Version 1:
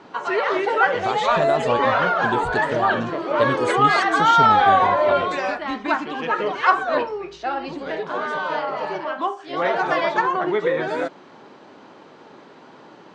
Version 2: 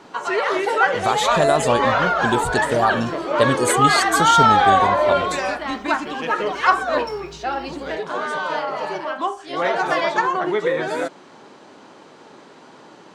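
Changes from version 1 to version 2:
speech +4.5 dB; second sound +11.5 dB; master: remove distance through air 120 m

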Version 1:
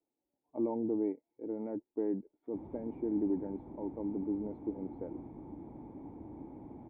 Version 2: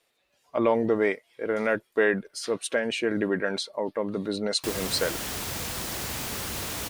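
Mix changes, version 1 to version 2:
background: entry +2.10 s; master: remove cascade formant filter u

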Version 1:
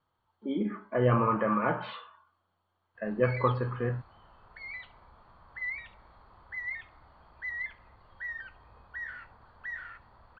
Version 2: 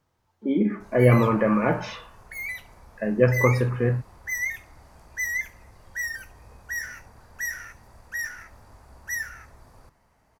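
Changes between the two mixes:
background: entry -2.25 s; master: remove rippled Chebyshev low-pass 4.5 kHz, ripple 9 dB

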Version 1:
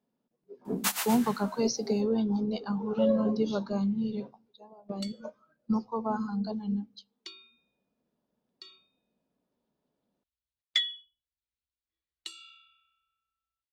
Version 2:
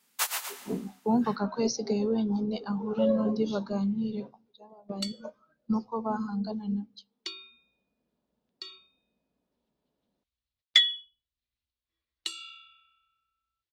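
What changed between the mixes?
first sound: entry -0.65 s; second sound +7.0 dB

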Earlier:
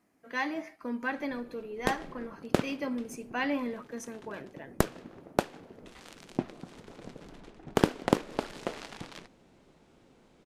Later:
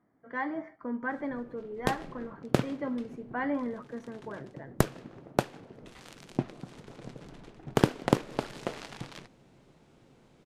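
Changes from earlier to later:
speech: add Savitzky-Golay filter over 41 samples; master: add peaking EQ 130 Hz +9 dB 0.42 oct

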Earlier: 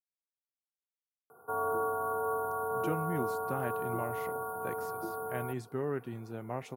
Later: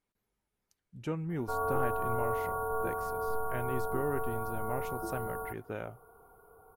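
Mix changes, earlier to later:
speech: entry -1.80 s; master: remove high-pass 110 Hz 24 dB/octave

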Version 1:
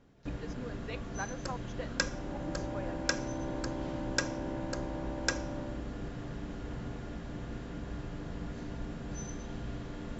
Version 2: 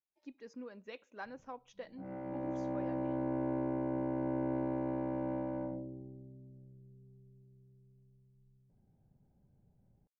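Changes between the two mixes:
speech -7.0 dB; first sound: muted; master: add bass shelf 440 Hz +7 dB

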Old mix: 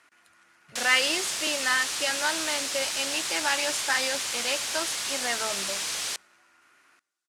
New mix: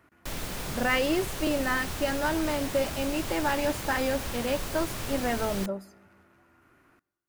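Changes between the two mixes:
background: entry -0.50 s; master: remove frequency weighting ITU-R 468

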